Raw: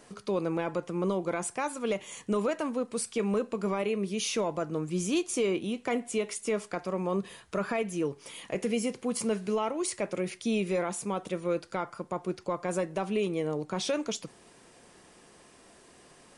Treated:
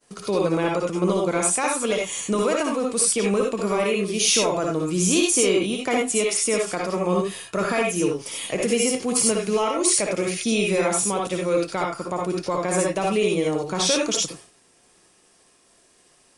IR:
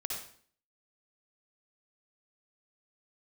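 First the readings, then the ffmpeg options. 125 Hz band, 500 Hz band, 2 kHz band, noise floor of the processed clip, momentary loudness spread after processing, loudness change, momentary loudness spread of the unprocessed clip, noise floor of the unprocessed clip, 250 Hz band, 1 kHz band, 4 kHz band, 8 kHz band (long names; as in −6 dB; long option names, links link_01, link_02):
+7.5 dB, +8.0 dB, +10.5 dB, −59 dBFS, 7 LU, +9.5 dB, 5 LU, −57 dBFS, +7.0 dB, +9.0 dB, +13.5 dB, +16.0 dB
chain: -filter_complex "[0:a]agate=range=-33dB:threshold=-46dB:ratio=3:detection=peak,highshelf=frequency=3800:gain=9[link_01];[1:a]atrim=start_sample=2205,atrim=end_sample=4410[link_02];[link_01][link_02]afir=irnorm=-1:irlink=0,volume=7.5dB"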